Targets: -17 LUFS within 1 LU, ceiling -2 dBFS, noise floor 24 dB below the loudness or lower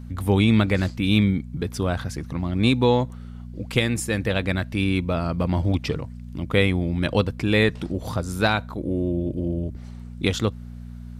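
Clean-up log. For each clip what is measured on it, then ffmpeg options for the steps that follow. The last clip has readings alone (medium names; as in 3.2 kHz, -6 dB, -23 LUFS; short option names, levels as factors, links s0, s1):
hum 60 Hz; highest harmonic 240 Hz; hum level -35 dBFS; loudness -23.5 LUFS; peak level -4.5 dBFS; loudness target -17.0 LUFS
-> -af "bandreject=f=60:t=h:w=4,bandreject=f=120:t=h:w=4,bandreject=f=180:t=h:w=4,bandreject=f=240:t=h:w=4"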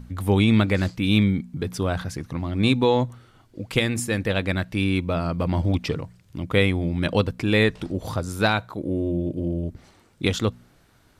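hum not found; loudness -23.5 LUFS; peak level -5.5 dBFS; loudness target -17.0 LUFS
-> -af "volume=2.11,alimiter=limit=0.794:level=0:latency=1"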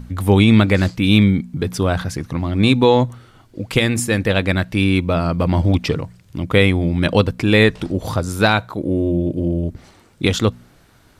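loudness -17.5 LUFS; peak level -2.0 dBFS; noise floor -51 dBFS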